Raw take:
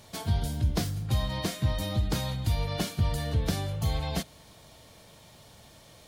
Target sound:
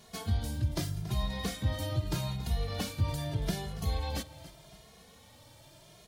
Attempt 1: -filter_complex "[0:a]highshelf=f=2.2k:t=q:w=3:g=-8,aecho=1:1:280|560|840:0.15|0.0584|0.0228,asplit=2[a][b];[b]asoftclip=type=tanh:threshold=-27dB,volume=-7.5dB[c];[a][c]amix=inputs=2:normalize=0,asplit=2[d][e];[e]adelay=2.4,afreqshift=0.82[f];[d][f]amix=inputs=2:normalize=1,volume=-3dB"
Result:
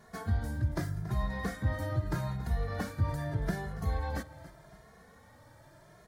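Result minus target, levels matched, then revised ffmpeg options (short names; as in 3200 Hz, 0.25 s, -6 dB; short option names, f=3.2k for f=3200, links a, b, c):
4000 Hz band -11.0 dB
-filter_complex "[0:a]aecho=1:1:280|560|840:0.15|0.0584|0.0228,asplit=2[a][b];[b]asoftclip=type=tanh:threshold=-27dB,volume=-7.5dB[c];[a][c]amix=inputs=2:normalize=0,asplit=2[d][e];[e]adelay=2.4,afreqshift=0.82[f];[d][f]amix=inputs=2:normalize=1,volume=-3dB"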